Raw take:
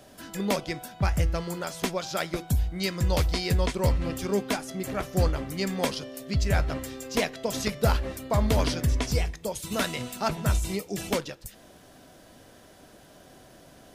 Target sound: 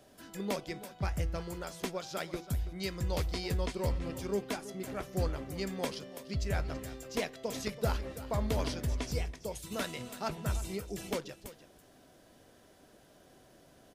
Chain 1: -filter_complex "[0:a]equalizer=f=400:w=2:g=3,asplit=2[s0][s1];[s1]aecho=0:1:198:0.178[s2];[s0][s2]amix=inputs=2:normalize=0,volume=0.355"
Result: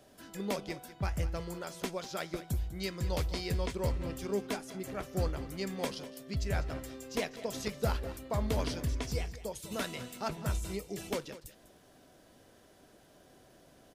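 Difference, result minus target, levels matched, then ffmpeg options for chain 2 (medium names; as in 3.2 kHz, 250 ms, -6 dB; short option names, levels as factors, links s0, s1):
echo 132 ms early
-filter_complex "[0:a]equalizer=f=400:w=2:g=3,asplit=2[s0][s1];[s1]aecho=0:1:330:0.178[s2];[s0][s2]amix=inputs=2:normalize=0,volume=0.355"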